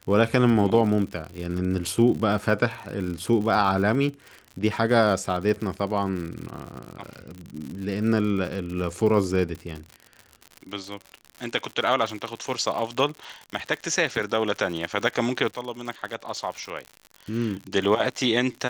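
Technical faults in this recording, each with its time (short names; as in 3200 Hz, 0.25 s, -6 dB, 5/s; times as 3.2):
crackle 80/s -31 dBFS
1.87 gap 2 ms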